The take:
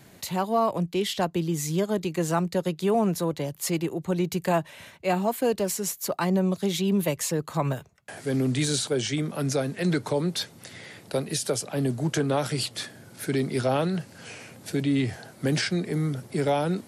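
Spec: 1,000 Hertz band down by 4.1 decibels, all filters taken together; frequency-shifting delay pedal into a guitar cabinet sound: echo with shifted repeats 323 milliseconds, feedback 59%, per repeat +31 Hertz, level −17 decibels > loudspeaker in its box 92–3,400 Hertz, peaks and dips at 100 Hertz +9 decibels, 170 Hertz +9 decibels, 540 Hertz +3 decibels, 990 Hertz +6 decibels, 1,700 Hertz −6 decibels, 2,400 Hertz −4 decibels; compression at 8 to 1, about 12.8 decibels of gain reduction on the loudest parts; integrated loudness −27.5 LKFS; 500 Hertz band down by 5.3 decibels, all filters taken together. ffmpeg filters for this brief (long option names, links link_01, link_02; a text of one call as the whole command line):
ffmpeg -i in.wav -filter_complex "[0:a]equalizer=frequency=500:width_type=o:gain=-7.5,equalizer=frequency=1000:width_type=o:gain=-5.5,acompressor=threshold=-36dB:ratio=8,asplit=7[link_01][link_02][link_03][link_04][link_05][link_06][link_07];[link_02]adelay=323,afreqshift=31,volume=-17dB[link_08];[link_03]adelay=646,afreqshift=62,volume=-21.6dB[link_09];[link_04]adelay=969,afreqshift=93,volume=-26.2dB[link_10];[link_05]adelay=1292,afreqshift=124,volume=-30.7dB[link_11];[link_06]adelay=1615,afreqshift=155,volume=-35.3dB[link_12];[link_07]adelay=1938,afreqshift=186,volume=-39.9dB[link_13];[link_01][link_08][link_09][link_10][link_11][link_12][link_13]amix=inputs=7:normalize=0,highpass=92,equalizer=frequency=100:width_type=q:width=4:gain=9,equalizer=frequency=170:width_type=q:width=4:gain=9,equalizer=frequency=540:width_type=q:width=4:gain=3,equalizer=frequency=990:width_type=q:width=4:gain=6,equalizer=frequency=1700:width_type=q:width=4:gain=-6,equalizer=frequency=2400:width_type=q:width=4:gain=-4,lowpass=frequency=3400:width=0.5412,lowpass=frequency=3400:width=1.3066,volume=9.5dB" out.wav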